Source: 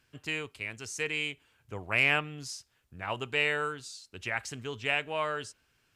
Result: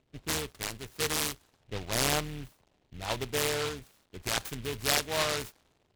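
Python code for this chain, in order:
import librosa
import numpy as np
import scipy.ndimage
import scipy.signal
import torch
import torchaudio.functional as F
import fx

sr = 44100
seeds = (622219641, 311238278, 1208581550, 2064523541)

p1 = fx.octave_divider(x, sr, octaves=2, level_db=-5.0)
p2 = fx.dmg_crackle(p1, sr, seeds[0], per_s=410.0, level_db=-45.0)
p3 = fx.spec_box(p2, sr, start_s=1.62, length_s=2.21, low_hz=1100.0, high_hz=7200.0, gain_db=-6)
p4 = fx.env_lowpass(p3, sr, base_hz=580.0, full_db=-29.5)
p5 = fx.quant_dither(p4, sr, seeds[1], bits=8, dither='none')
p6 = p4 + (p5 * librosa.db_to_amplitude(-11.0))
y = fx.noise_mod_delay(p6, sr, seeds[2], noise_hz=2400.0, depth_ms=0.15)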